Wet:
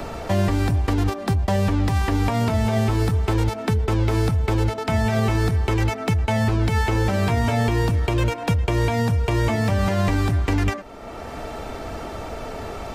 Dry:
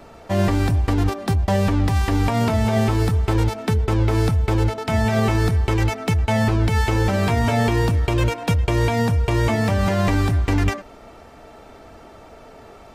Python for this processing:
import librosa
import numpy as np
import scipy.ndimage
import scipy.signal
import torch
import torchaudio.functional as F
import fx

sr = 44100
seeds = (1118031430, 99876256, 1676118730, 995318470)

y = fx.band_squash(x, sr, depth_pct=70)
y = y * librosa.db_to_amplitude(-2.0)